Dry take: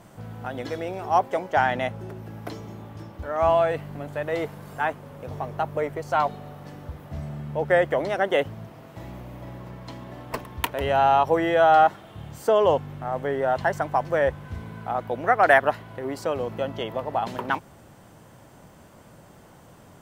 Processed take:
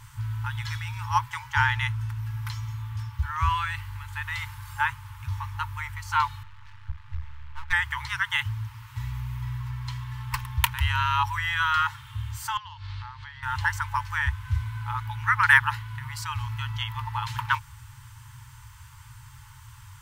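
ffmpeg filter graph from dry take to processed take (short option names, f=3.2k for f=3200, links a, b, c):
-filter_complex "[0:a]asettb=1/sr,asplit=3[a][b][c];[a]atrim=end=6.434[d];[b]atrim=start=6.43:end=7.73,asetpts=PTS-STARTPTS,afade=t=in:d=0.004:c=qsin,afade=t=out:st=1.296:d=0.004:c=qsin,lowpass=2.9k,equalizer=f=320:t=o:w=2.4:g=-12,aeval=exprs='max(val(0),0)':c=same[e];[c]atrim=start=7.726[f];[d][e]acrossfade=d=0.004:c1=hsin:c2=qsin[g];[g][f]acrossfade=d=0.004:c1=qsin:c2=hsin,asettb=1/sr,asplit=3[h][i][j];[h]atrim=end=12.574[k];[i]atrim=start=12.57:end=13.43,asetpts=PTS-STARTPTS,afade=t=in:d=0.004:c=qsin,afade=t=out:st=0.856:d=0.004:c=qsin,acompressor=threshold=-33dB:ratio=12:attack=3.2:release=140:knee=1:detection=peak,lowpass=f=4.4k:t=q:w=5[l];[j]atrim=start=13.426[m];[k][l]acrossfade=d=0.004:c1=hsin:c2=qsin[n];[n][m]acrossfade=d=0.004:c1=qsin:c2=hsin,equalizer=f=970:t=o:w=1.5:g=-5,afftfilt=real='re*(1-between(b*sr/4096,130,850))':imag='im*(1-between(b*sr/4096,130,850))':win_size=4096:overlap=0.75,lowshelf=f=400:g=4.5,volume=5.5dB"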